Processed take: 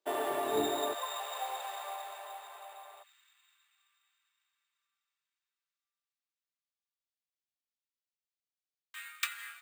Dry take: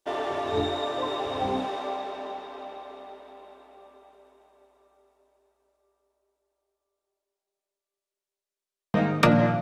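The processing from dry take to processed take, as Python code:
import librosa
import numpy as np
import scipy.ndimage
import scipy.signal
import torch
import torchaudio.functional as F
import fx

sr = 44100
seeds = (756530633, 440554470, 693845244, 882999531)

y = fx.bessel_highpass(x, sr, hz=fx.steps((0.0, 210.0), (0.93, 1000.0), (3.02, 2600.0)), order=8)
y = np.repeat(scipy.signal.resample_poly(y, 1, 4), 4)[:len(y)]
y = y * librosa.db_to_amplitude(-3.5)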